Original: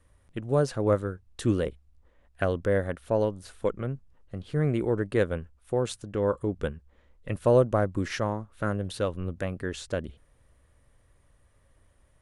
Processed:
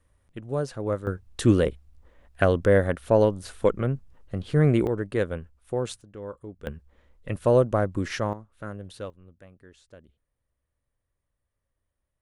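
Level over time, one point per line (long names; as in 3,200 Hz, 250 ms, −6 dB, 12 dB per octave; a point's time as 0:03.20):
−4 dB
from 0:01.07 +6 dB
from 0:04.87 −1 dB
from 0:06.01 −11.5 dB
from 0:06.67 +1 dB
from 0:08.33 −8 dB
from 0:09.10 −19 dB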